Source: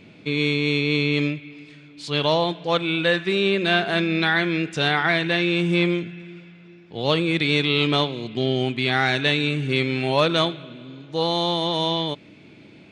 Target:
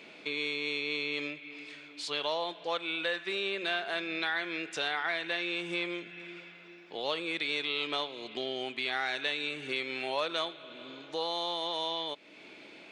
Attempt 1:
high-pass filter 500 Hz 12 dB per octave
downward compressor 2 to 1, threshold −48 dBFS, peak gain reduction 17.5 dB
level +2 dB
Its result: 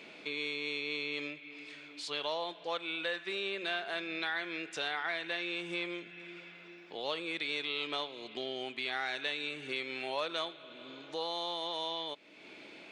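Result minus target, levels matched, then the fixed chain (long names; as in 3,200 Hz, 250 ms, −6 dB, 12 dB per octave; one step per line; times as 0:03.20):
downward compressor: peak gain reduction +3 dB
high-pass filter 500 Hz 12 dB per octave
downward compressor 2 to 1, threshold −41.5 dBFS, peak gain reduction 14 dB
level +2 dB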